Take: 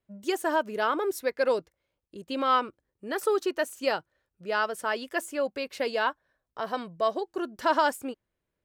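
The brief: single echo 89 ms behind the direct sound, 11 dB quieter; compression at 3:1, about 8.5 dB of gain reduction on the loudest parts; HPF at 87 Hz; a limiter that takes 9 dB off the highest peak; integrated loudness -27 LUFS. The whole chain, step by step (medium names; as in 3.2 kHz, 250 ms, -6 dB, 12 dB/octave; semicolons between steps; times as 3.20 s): high-pass 87 Hz; compression 3:1, threshold -31 dBFS; peak limiter -27.5 dBFS; delay 89 ms -11 dB; trim +11 dB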